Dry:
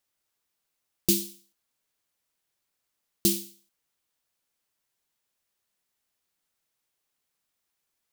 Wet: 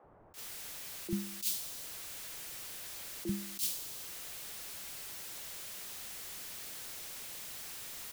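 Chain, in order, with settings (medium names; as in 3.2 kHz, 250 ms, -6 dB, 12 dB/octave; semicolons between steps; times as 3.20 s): jump at every zero crossing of -33 dBFS; three bands offset in time mids, lows, highs 40/340 ms, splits 260/1000 Hz; attacks held to a fixed rise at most 240 dB/s; trim -5.5 dB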